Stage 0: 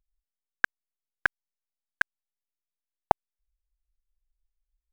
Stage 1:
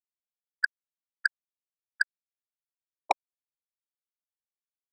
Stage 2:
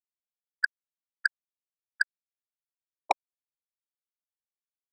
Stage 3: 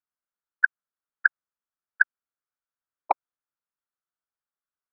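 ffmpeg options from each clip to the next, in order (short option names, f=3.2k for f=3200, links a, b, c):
-af "afftfilt=real='re*gte(hypot(re,im),0.447)':imag='im*gte(hypot(re,im),0.447)':win_size=1024:overlap=0.75,asoftclip=type=tanh:threshold=-18dB,volume=5dB"
-af anull
-af "lowpass=f=1.4k:t=q:w=3.1"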